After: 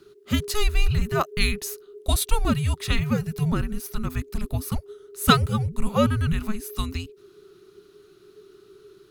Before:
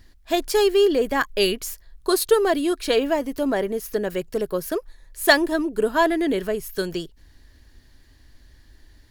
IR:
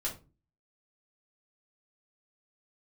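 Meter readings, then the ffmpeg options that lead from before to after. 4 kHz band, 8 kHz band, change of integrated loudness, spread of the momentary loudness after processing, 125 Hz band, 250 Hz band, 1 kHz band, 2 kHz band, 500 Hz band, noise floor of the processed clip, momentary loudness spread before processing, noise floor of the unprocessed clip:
−2.0 dB, −0.5 dB, −3.5 dB, 11 LU, +17.0 dB, −2.0 dB, −2.5 dB, −6.0 dB, −11.5 dB, −55 dBFS, 11 LU, −54 dBFS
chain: -af "afreqshift=-430,volume=-1dB"

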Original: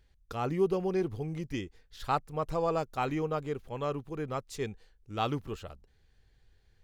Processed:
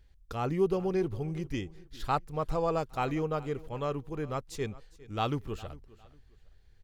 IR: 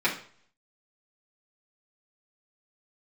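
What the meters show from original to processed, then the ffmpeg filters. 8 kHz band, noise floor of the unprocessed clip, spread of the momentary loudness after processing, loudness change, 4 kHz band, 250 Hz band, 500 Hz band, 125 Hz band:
0.0 dB, −66 dBFS, 12 LU, +0.5 dB, 0.0 dB, +1.0 dB, +0.5 dB, +2.0 dB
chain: -filter_complex "[0:a]lowshelf=frequency=78:gain=7.5,asplit=2[link_01][link_02];[link_02]aecho=0:1:406|812:0.1|0.028[link_03];[link_01][link_03]amix=inputs=2:normalize=0"

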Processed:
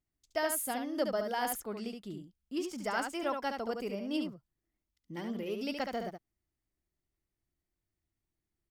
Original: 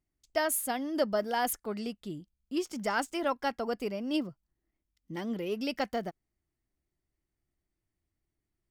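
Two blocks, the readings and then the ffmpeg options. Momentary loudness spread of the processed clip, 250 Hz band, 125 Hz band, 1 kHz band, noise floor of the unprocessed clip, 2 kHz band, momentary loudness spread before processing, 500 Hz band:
11 LU, −3.0 dB, −3.0 dB, −3.0 dB, below −85 dBFS, −3.0 dB, 11 LU, −3.0 dB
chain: -af "aecho=1:1:71:0.531,volume=-4dB"

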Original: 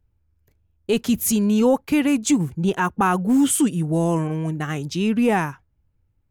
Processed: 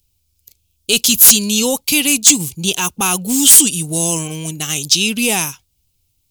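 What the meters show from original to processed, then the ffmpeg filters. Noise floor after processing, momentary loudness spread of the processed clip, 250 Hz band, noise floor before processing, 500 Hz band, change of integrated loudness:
−66 dBFS, 14 LU, −1.5 dB, −67 dBFS, −1.5 dB, +9.0 dB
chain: -af "aexciter=amount=8.7:drive=9.3:freq=2700,aeval=exprs='4.47*sin(PI/2*2.82*val(0)/4.47)':channel_layout=same,volume=-14.5dB"

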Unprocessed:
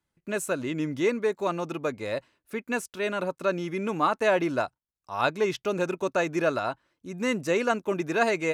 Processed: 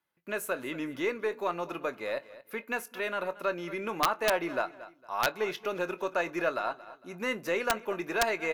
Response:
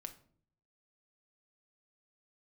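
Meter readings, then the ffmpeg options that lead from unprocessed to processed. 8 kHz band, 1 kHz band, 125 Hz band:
−2.0 dB, −3.0 dB, −11.5 dB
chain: -filter_complex "[0:a]aemphasis=mode=reproduction:type=75fm,aexciter=amount=7.8:drive=7:freq=11000,highpass=frequency=960:poles=1,asplit=2[link_01][link_02];[1:a]atrim=start_sample=2205[link_03];[link_02][link_03]afir=irnorm=-1:irlink=0,volume=-5.5dB[link_04];[link_01][link_04]amix=inputs=2:normalize=0,aeval=exprs='0.299*(cos(1*acos(clip(val(0)/0.299,-1,1)))-cos(1*PI/2))+0.015*(cos(2*acos(clip(val(0)/0.299,-1,1)))-cos(2*PI/2))+0.00376*(cos(6*acos(clip(val(0)/0.299,-1,1)))-cos(6*PI/2))+0.00596*(cos(8*acos(clip(val(0)/0.299,-1,1)))-cos(8*PI/2))':channel_layout=same,aecho=1:1:228|456:0.112|0.0314,asplit=2[link_05][link_06];[link_06]acompressor=threshold=-35dB:ratio=6,volume=-0.5dB[link_07];[link_05][link_07]amix=inputs=2:normalize=0,asplit=2[link_08][link_09];[link_09]adelay=23,volume=-13.5dB[link_10];[link_08][link_10]amix=inputs=2:normalize=0,aeval=exprs='(mod(3.55*val(0)+1,2)-1)/3.55':channel_layout=same,volume=-4dB"

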